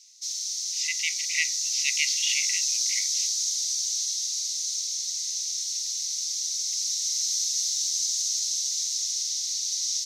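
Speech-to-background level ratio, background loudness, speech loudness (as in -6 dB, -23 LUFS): -5.0 dB, -25.5 LUFS, -30.5 LUFS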